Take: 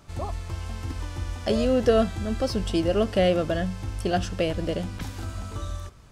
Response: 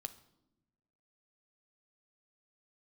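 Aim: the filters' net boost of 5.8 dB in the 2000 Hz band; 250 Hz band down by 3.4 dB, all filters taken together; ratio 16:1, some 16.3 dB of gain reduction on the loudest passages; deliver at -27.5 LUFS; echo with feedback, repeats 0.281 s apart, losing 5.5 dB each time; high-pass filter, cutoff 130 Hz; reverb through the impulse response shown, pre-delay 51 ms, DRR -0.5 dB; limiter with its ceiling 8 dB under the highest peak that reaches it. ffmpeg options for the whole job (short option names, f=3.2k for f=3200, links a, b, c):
-filter_complex "[0:a]highpass=130,equalizer=f=250:t=o:g=-4,equalizer=f=2k:t=o:g=7.5,acompressor=threshold=-31dB:ratio=16,alimiter=level_in=5dB:limit=-24dB:level=0:latency=1,volume=-5dB,aecho=1:1:281|562|843|1124|1405|1686|1967:0.531|0.281|0.149|0.079|0.0419|0.0222|0.0118,asplit=2[a][b];[1:a]atrim=start_sample=2205,adelay=51[c];[b][c]afir=irnorm=-1:irlink=0,volume=3.5dB[d];[a][d]amix=inputs=2:normalize=0,volume=7dB"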